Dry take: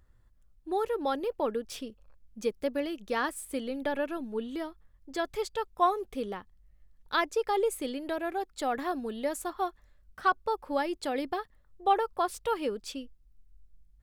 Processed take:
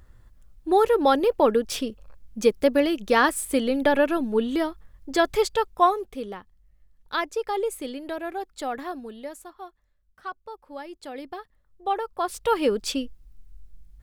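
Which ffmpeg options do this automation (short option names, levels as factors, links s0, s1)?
-af "volume=39.8,afade=t=out:st=5.37:d=0.77:silence=0.316228,afade=t=out:st=8.6:d=0.93:silence=0.298538,afade=t=in:st=10.67:d=1.49:silence=0.334965,afade=t=in:st=12.16:d=0.69:silence=0.266073"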